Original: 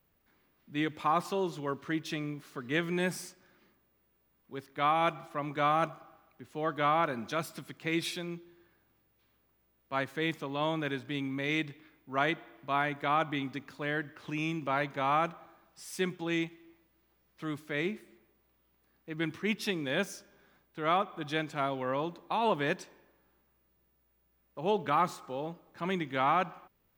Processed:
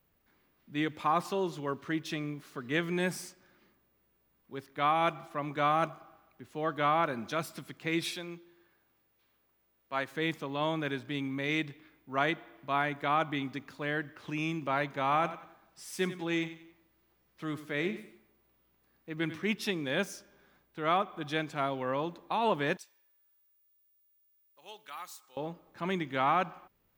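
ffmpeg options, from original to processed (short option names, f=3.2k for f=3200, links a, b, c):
-filter_complex "[0:a]asettb=1/sr,asplit=3[a][b][c];[a]atrim=end=8.134[d];[b]atrim=start=8.13:end=10.11,asetpts=PTS-STARTPTS,afade=t=in:d=0.004:c=qsin,afade=t=out:st=1.976:d=0.004:c=qsin,lowshelf=f=240:g=-9[e];[c]atrim=start=10.106[f];[d][e]acrossfade=d=0.004:c1=hsin:c2=qsin[g];[g][f]acrossfade=d=0.004:c1=qsin:c2=hsin,asettb=1/sr,asplit=3[h][i][j];[h]atrim=end=15.024[k];[i]atrim=start=15.02:end=19.51,asetpts=PTS-STARTPTS,afade=t=in:d=0.004:c=qsin,afade=t=out:st=4.486:d=0.004:c=qsin,aecho=1:1:92|184|276:0.224|0.0761|0.0259,atrim=end_sample=198009[l];[j]atrim=start=19.506[m];[k][l]acrossfade=d=0.004:c1=hsin:c2=qsin[n];[n][m]acrossfade=d=0.004:c1=qsin:c2=hsin,asettb=1/sr,asplit=3[o][p][q];[o]atrim=end=22.774[r];[p]atrim=start=22.77:end=25.37,asetpts=PTS-STARTPTS,afade=t=in:d=0.004:c=qsin,afade=t=out:st=2.596:d=0.004:c=qsin,aderivative[s];[q]atrim=start=25.366[t];[r][s]acrossfade=d=0.004:c1=hsin:c2=qsin[u];[u][t]acrossfade=d=0.004:c1=qsin:c2=hsin"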